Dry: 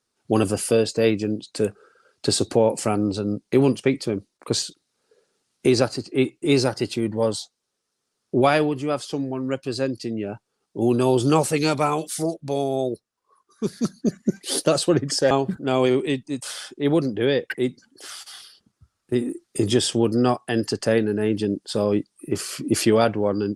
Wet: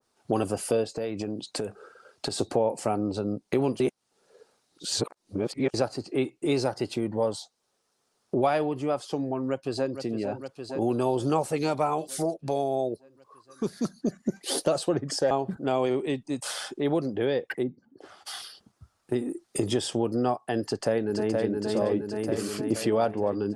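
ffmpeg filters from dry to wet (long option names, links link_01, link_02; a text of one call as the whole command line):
ffmpeg -i in.wav -filter_complex "[0:a]asettb=1/sr,asplit=3[link_01][link_02][link_03];[link_01]atrim=end=0.844[link_04];[link_02]atrim=start=0.84:end=2.39,asetpts=PTS-STARTPTS,afade=type=in:duration=0.004:curve=qsin,afade=type=out:start_time=1.546:duration=0.004:curve=qsin,acompressor=threshold=-26dB:ratio=6:attack=3.2:release=140:knee=1:detection=peak[link_05];[link_03]atrim=start=2.386[link_06];[link_04][link_05]acrossfade=duration=0.004:curve1=hsin:curve2=qsin[link_07];[link_07][link_06]acrossfade=duration=0.004:curve1=qsin:curve2=hsin,asplit=2[link_08][link_09];[link_09]afade=type=in:start_time=9.31:duration=0.01,afade=type=out:start_time=10.01:duration=0.01,aecho=0:1:460|920|1380|1840|2300|2760|3220|3680:0.266073|0.172947|0.112416|0.0730702|0.0474956|0.0308721|0.0200669|0.0130435[link_10];[link_08][link_10]amix=inputs=2:normalize=0,asplit=3[link_11][link_12][link_13];[link_11]afade=type=out:start_time=17.62:duration=0.02[link_14];[link_12]bandpass=frequency=170:width_type=q:width=0.57,afade=type=in:start_time=17.62:duration=0.02,afade=type=out:start_time=18.25:duration=0.02[link_15];[link_13]afade=type=in:start_time=18.25:duration=0.02[link_16];[link_14][link_15][link_16]amix=inputs=3:normalize=0,asplit=2[link_17][link_18];[link_18]afade=type=in:start_time=20.62:duration=0.01,afade=type=out:start_time=21.55:duration=0.01,aecho=0:1:470|940|1410|1880|2350|2820|3290|3760|4230|4700:0.707946|0.460165|0.299107|0.19442|0.126373|0.0821423|0.0533925|0.0347051|0.0225583|0.0146629[link_19];[link_17][link_19]amix=inputs=2:normalize=0,asplit=3[link_20][link_21][link_22];[link_20]atrim=end=3.802[link_23];[link_21]atrim=start=3.798:end=5.742,asetpts=PTS-STARTPTS,areverse[link_24];[link_22]atrim=start=5.738[link_25];[link_23][link_24]acrossfade=duration=0.004:curve1=hsin:curve2=hsin[link_26];[link_26][link_25]acrossfade=duration=0.004:curve1=hsin:curve2=hsin,equalizer=frequency=750:width=1.2:gain=7.5,acompressor=threshold=-34dB:ratio=2,adynamicequalizer=threshold=0.00794:dfrequency=1500:dqfactor=0.7:tfrequency=1500:tqfactor=0.7:attack=5:release=100:ratio=0.375:range=2:mode=cutabove:tftype=highshelf,volume=2.5dB" out.wav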